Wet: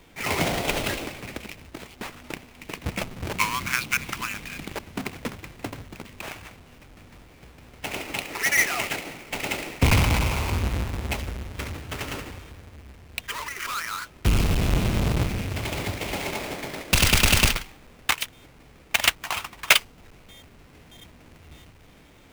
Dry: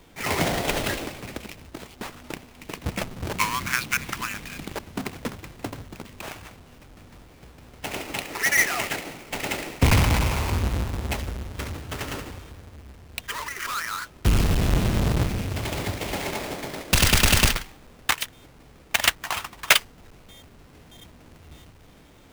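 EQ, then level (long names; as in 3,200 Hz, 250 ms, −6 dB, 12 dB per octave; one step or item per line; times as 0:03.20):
dynamic equaliser 1,800 Hz, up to −4 dB, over −40 dBFS, Q 3.4
parametric band 2,300 Hz +4 dB 0.77 octaves
−1.0 dB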